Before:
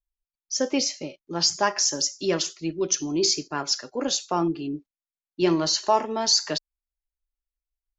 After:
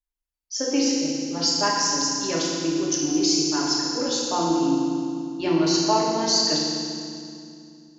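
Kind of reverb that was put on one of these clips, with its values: FDN reverb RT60 2.4 s, low-frequency decay 1.55×, high-frequency decay 0.95×, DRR -4.5 dB; gain -4.5 dB

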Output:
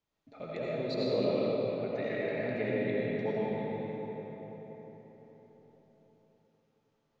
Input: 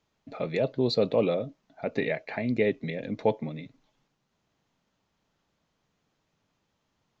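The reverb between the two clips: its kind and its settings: digital reverb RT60 4.8 s, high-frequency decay 0.55×, pre-delay 45 ms, DRR -7.5 dB; gain -12.5 dB

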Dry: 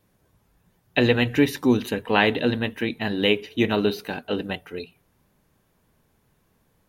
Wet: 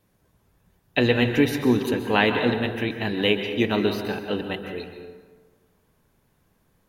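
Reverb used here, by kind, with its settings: plate-style reverb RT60 1.5 s, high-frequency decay 0.5×, pre-delay 0.115 s, DRR 6 dB; gain -1 dB

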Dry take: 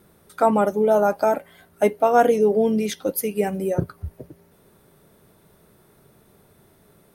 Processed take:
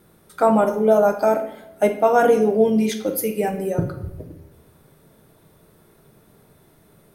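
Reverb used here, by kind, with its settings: shoebox room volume 210 m³, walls mixed, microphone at 0.57 m

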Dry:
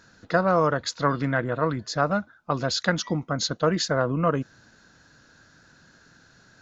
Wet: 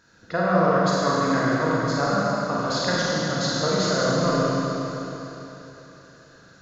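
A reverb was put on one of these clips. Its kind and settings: Schroeder reverb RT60 3.6 s, combs from 33 ms, DRR -7 dB; gain -5 dB

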